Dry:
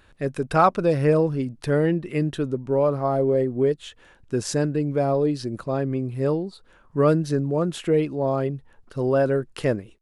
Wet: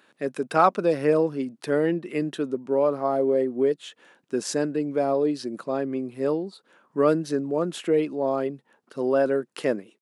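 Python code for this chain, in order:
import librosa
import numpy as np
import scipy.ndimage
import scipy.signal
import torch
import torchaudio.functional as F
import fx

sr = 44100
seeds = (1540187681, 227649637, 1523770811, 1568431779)

y = scipy.signal.sosfilt(scipy.signal.butter(4, 200.0, 'highpass', fs=sr, output='sos'), x)
y = y * 10.0 ** (-1.0 / 20.0)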